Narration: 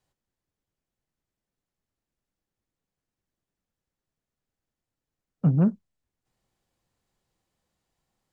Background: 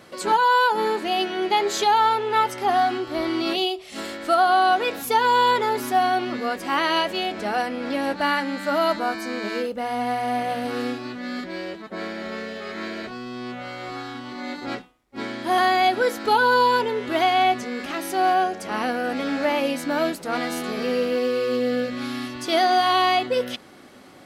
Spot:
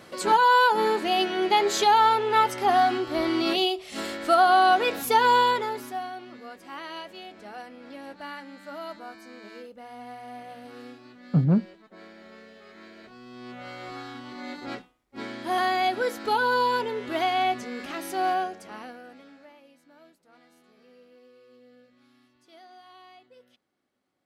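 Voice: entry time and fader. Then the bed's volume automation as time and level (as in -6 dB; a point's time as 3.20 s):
5.90 s, 0.0 dB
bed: 5.33 s -0.5 dB
6.15 s -16.5 dB
12.95 s -16.5 dB
13.68 s -5.5 dB
18.33 s -5.5 dB
19.62 s -32 dB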